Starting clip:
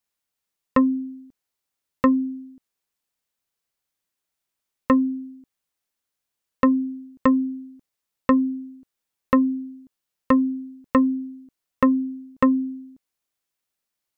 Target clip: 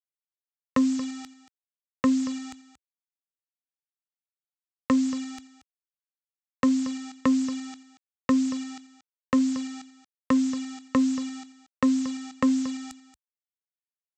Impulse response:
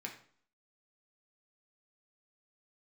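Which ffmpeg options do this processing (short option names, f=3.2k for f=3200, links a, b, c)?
-filter_complex "[0:a]acrossover=split=310[a][b];[b]acompressor=threshold=-26dB:ratio=10[c];[a][c]amix=inputs=2:normalize=0,aresample=16000,acrusher=bits=6:mix=0:aa=0.000001,aresample=44100,highpass=86,areverse,acompressor=mode=upward:threshold=-41dB:ratio=2.5,areverse,aemphasis=mode=production:type=50kf,aecho=1:1:230:0.178,volume=-1.5dB"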